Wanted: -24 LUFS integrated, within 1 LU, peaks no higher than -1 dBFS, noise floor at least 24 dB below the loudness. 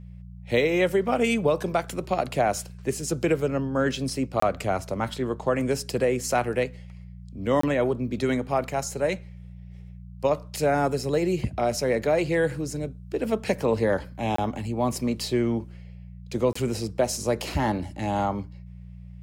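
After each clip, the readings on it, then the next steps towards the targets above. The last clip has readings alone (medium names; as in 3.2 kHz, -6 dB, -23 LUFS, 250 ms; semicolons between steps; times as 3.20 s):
dropouts 4; longest dropout 24 ms; hum 60 Hz; highest harmonic 180 Hz; hum level -40 dBFS; loudness -26.0 LUFS; peak level -9.5 dBFS; loudness target -24.0 LUFS
-> interpolate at 4.40/7.61/14.36/16.53 s, 24 ms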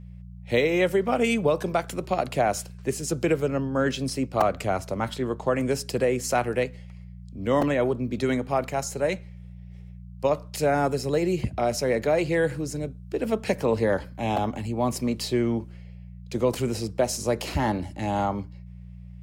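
dropouts 0; hum 60 Hz; highest harmonic 180 Hz; hum level -40 dBFS
-> de-hum 60 Hz, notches 3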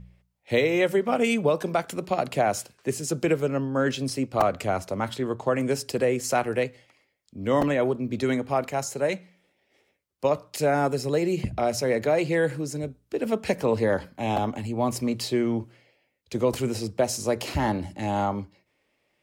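hum not found; loudness -26.0 LUFS; peak level -7.5 dBFS; loudness target -24.0 LUFS
-> trim +2 dB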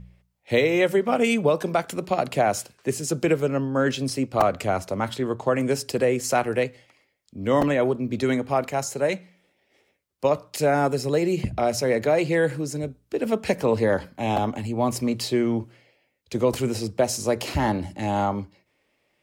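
loudness -24.0 LUFS; peak level -5.5 dBFS; noise floor -71 dBFS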